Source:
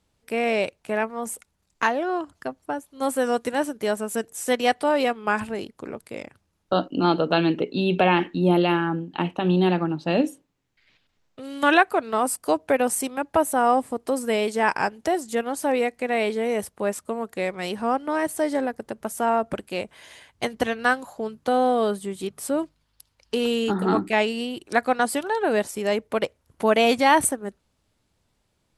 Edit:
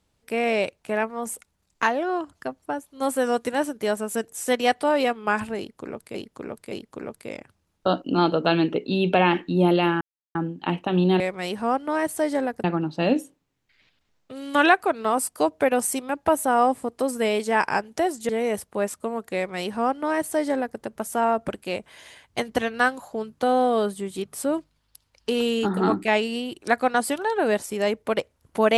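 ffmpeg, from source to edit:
ffmpeg -i in.wav -filter_complex "[0:a]asplit=7[link_01][link_02][link_03][link_04][link_05][link_06][link_07];[link_01]atrim=end=6.152[link_08];[link_02]atrim=start=5.578:end=6.152[link_09];[link_03]atrim=start=5.578:end=8.87,asetpts=PTS-STARTPTS,afade=type=out:start_time=3.288:duration=0.004:curve=hsin,apad=pad_dur=0.34[link_10];[link_04]atrim=start=8.87:end=9.722,asetpts=PTS-STARTPTS,afade=type=in:duration=0.004:curve=hsin[link_11];[link_05]atrim=start=17.398:end=18.842[link_12];[link_06]atrim=start=9.718:end=15.372[link_13];[link_07]atrim=start=16.338[link_14];[link_08][link_09]acrossfade=duration=0.004:curve1=hsin:curve2=hsin[link_15];[link_10][link_11]concat=n=2:v=0:a=1[link_16];[link_15][link_16]acrossfade=duration=0.004:curve1=hsin:curve2=hsin[link_17];[link_17][link_12]acrossfade=duration=0.004:curve1=hsin:curve2=hsin[link_18];[link_18][link_13]acrossfade=duration=0.004:curve1=hsin:curve2=hsin[link_19];[link_19][link_14]acrossfade=duration=0.004:curve1=hsin:curve2=hsin" out.wav

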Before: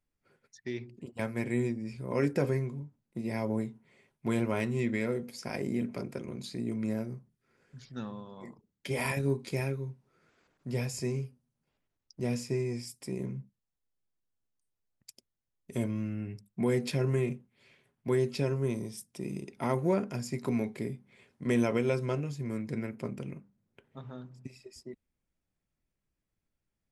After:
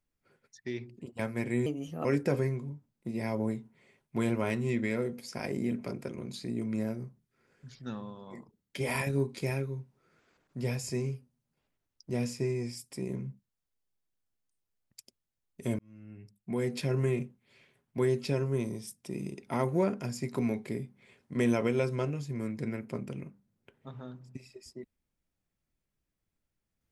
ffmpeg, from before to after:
ffmpeg -i in.wav -filter_complex "[0:a]asplit=4[link_01][link_02][link_03][link_04];[link_01]atrim=end=1.664[link_05];[link_02]atrim=start=1.66:end=2.15,asetpts=PTS-STARTPTS,asetrate=55566,aresample=44100[link_06];[link_03]atrim=start=2.146:end=15.89,asetpts=PTS-STARTPTS,afade=type=out:start_time=13.74:duration=0.004:curve=hsin[link_07];[link_04]atrim=start=15.89,asetpts=PTS-STARTPTS,afade=type=in:duration=1.22[link_08];[link_05][link_06]acrossfade=duration=0.004:curve1=hsin:curve2=hsin[link_09];[link_07][link_08]concat=n=2:v=0:a=1[link_10];[link_09][link_10]acrossfade=duration=0.004:curve1=hsin:curve2=hsin" out.wav

